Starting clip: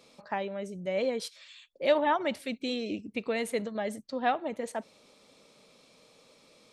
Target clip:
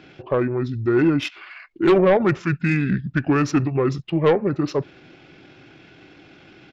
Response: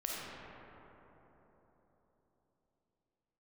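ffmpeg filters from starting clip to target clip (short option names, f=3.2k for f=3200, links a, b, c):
-af "adynamicsmooth=sensitivity=6:basefreq=7.1k,aeval=exprs='0.211*sin(PI/2*2*val(0)/0.211)':c=same,asetrate=27781,aresample=44100,atempo=1.5874,volume=3.5dB"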